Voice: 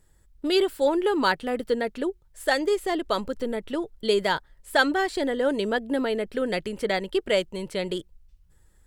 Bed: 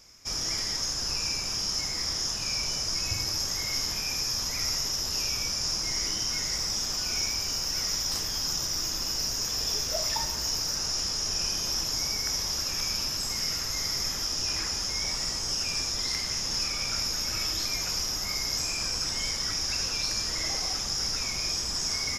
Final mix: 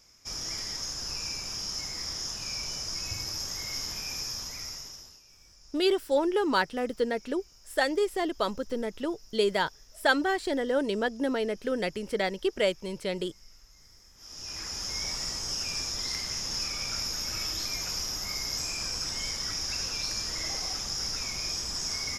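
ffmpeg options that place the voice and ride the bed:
ffmpeg -i stem1.wav -i stem2.wav -filter_complex "[0:a]adelay=5300,volume=-3dB[link_01];[1:a]volume=20dB,afade=type=out:start_time=4.21:duration=0.99:silence=0.0707946,afade=type=in:start_time=14.15:duration=0.79:silence=0.0562341[link_02];[link_01][link_02]amix=inputs=2:normalize=0" out.wav

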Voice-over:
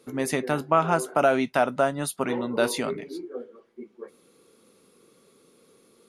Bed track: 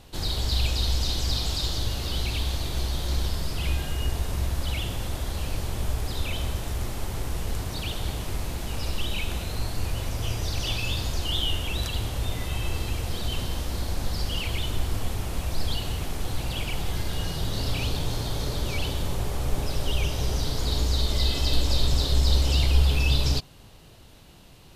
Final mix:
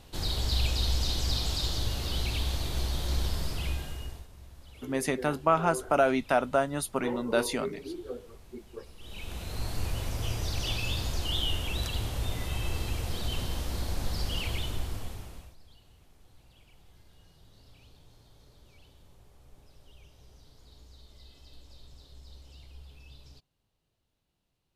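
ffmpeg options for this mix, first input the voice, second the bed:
ffmpeg -i stem1.wav -i stem2.wav -filter_complex "[0:a]adelay=4750,volume=-3dB[link_01];[1:a]volume=16.5dB,afade=type=out:start_time=3.44:duration=0.84:silence=0.1,afade=type=in:start_time=8.98:duration=0.75:silence=0.105925,afade=type=out:start_time=14.48:duration=1.08:silence=0.0501187[link_02];[link_01][link_02]amix=inputs=2:normalize=0" out.wav

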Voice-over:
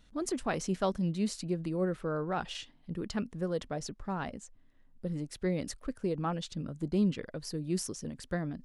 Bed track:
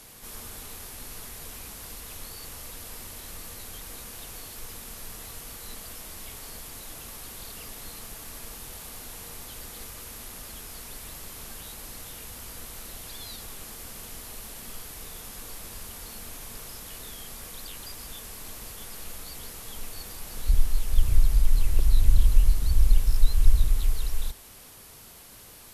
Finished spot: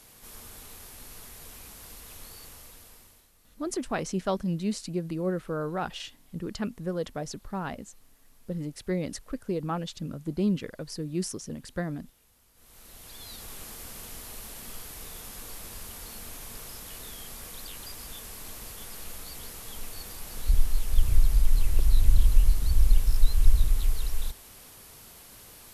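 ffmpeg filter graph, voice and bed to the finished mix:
ffmpeg -i stem1.wav -i stem2.wav -filter_complex "[0:a]adelay=3450,volume=2dB[link_01];[1:a]volume=16.5dB,afade=type=out:start_time=2.36:duration=0.94:silence=0.133352,afade=type=in:start_time=12.54:duration=1.02:silence=0.0841395[link_02];[link_01][link_02]amix=inputs=2:normalize=0" out.wav

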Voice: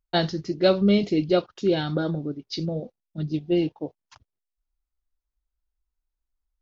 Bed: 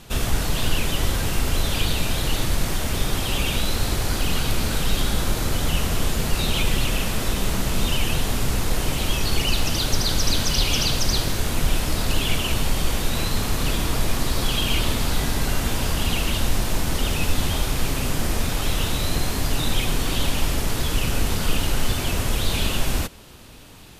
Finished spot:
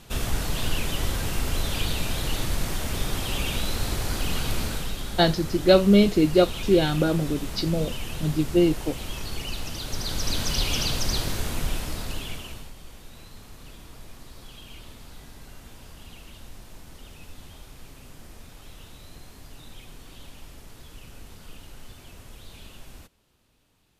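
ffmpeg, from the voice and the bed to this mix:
ffmpeg -i stem1.wav -i stem2.wav -filter_complex "[0:a]adelay=5050,volume=3dB[link_01];[1:a]volume=2dB,afade=type=out:start_time=4.6:duration=0.36:silence=0.473151,afade=type=in:start_time=9.83:duration=0.66:silence=0.473151,afade=type=out:start_time=11.34:duration=1.39:silence=0.125893[link_02];[link_01][link_02]amix=inputs=2:normalize=0" out.wav

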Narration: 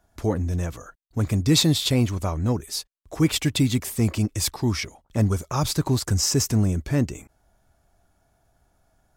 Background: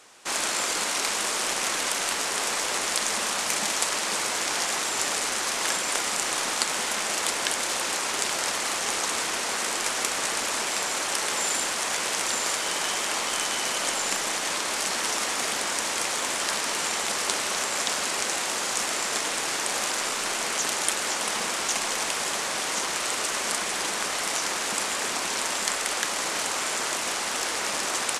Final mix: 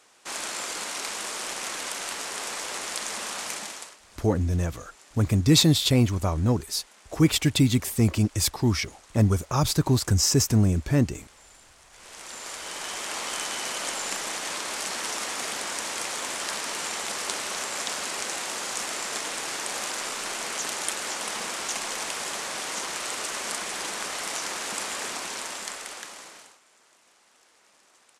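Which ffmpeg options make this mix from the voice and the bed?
ffmpeg -i stem1.wav -i stem2.wav -filter_complex "[0:a]adelay=4000,volume=0.5dB[link_01];[1:a]volume=17dB,afade=type=out:start_time=3.46:duration=0.51:silence=0.0891251,afade=type=in:start_time=11.91:duration=1.38:silence=0.0707946,afade=type=out:start_time=25.01:duration=1.58:silence=0.0375837[link_02];[link_01][link_02]amix=inputs=2:normalize=0" out.wav

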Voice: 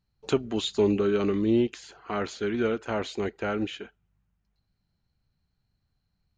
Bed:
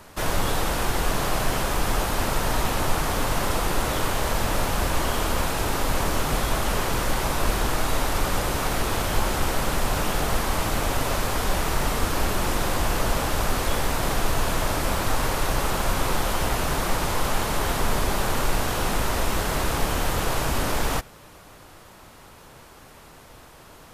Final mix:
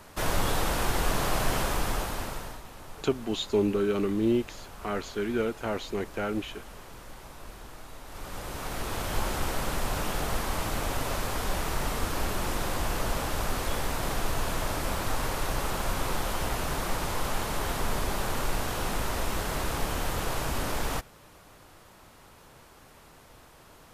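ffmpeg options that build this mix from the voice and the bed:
ffmpeg -i stem1.wav -i stem2.wav -filter_complex "[0:a]adelay=2750,volume=-2dB[link_01];[1:a]volume=12.5dB,afade=type=out:start_time=1.61:duration=1:silence=0.11885,afade=type=in:start_time=8.04:duration=1.17:silence=0.16788[link_02];[link_01][link_02]amix=inputs=2:normalize=0" out.wav

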